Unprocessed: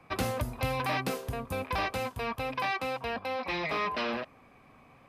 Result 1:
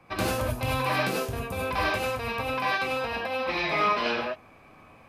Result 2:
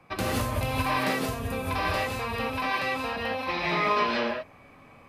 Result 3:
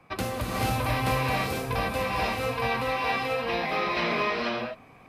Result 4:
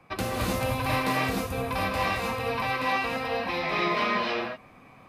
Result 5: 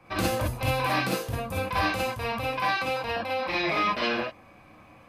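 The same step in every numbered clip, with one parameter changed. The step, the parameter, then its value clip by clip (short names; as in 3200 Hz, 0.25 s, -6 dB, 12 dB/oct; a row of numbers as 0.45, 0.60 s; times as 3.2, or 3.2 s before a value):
non-linear reverb, gate: 120, 200, 520, 340, 80 ms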